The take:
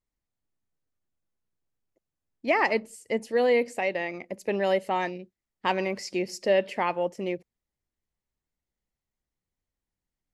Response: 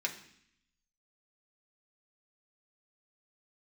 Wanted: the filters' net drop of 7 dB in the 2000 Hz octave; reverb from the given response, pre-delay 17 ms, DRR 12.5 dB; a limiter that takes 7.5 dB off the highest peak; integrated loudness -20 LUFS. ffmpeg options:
-filter_complex "[0:a]equalizer=f=2k:t=o:g=-8,alimiter=limit=-20.5dB:level=0:latency=1,asplit=2[a][b];[1:a]atrim=start_sample=2205,adelay=17[c];[b][c]afir=irnorm=-1:irlink=0,volume=-16.5dB[d];[a][d]amix=inputs=2:normalize=0,volume=11.5dB"

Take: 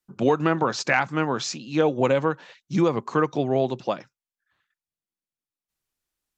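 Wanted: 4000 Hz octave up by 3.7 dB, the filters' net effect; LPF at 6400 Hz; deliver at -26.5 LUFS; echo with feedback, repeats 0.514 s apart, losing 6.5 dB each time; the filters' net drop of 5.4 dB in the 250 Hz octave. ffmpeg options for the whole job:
-af "lowpass=6.4k,equalizer=f=250:t=o:g=-8,equalizer=f=4k:t=o:g=5.5,aecho=1:1:514|1028|1542|2056|2570|3084:0.473|0.222|0.105|0.0491|0.0231|0.0109,volume=-1.5dB"

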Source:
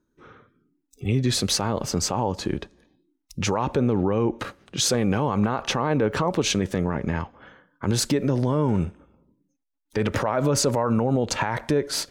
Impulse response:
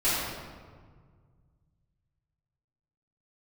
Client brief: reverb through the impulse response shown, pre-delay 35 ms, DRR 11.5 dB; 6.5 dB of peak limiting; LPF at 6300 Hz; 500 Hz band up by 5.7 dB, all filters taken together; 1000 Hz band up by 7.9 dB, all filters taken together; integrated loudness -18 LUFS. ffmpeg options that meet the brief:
-filter_complex "[0:a]lowpass=6.3k,equalizer=f=500:t=o:g=5,equalizer=f=1k:t=o:g=8,alimiter=limit=-12dB:level=0:latency=1,asplit=2[a][b];[1:a]atrim=start_sample=2205,adelay=35[c];[b][c]afir=irnorm=-1:irlink=0,volume=-25dB[d];[a][d]amix=inputs=2:normalize=0,volume=5.5dB"

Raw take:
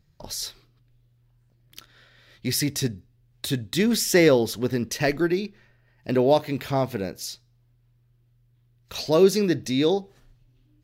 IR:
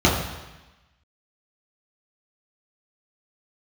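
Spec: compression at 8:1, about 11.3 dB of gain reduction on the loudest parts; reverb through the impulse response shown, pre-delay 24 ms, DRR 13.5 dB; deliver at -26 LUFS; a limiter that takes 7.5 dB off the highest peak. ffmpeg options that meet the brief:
-filter_complex "[0:a]acompressor=threshold=-24dB:ratio=8,alimiter=limit=-21dB:level=0:latency=1,asplit=2[a][b];[1:a]atrim=start_sample=2205,adelay=24[c];[b][c]afir=irnorm=-1:irlink=0,volume=-34.5dB[d];[a][d]amix=inputs=2:normalize=0,volume=5dB"

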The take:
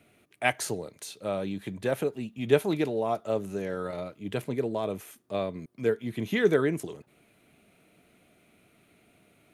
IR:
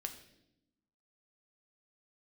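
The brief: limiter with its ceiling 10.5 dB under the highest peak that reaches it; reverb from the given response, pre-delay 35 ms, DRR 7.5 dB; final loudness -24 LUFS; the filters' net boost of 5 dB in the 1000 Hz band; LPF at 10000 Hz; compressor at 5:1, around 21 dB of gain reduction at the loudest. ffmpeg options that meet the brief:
-filter_complex "[0:a]lowpass=10k,equalizer=f=1k:t=o:g=7.5,acompressor=threshold=-40dB:ratio=5,alimiter=level_in=9.5dB:limit=-24dB:level=0:latency=1,volume=-9.5dB,asplit=2[a][b];[1:a]atrim=start_sample=2205,adelay=35[c];[b][c]afir=irnorm=-1:irlink=0,volume=-5.5dB[d];[a][d]amix=inputs=2:normalize=0,volume=20.5dB"

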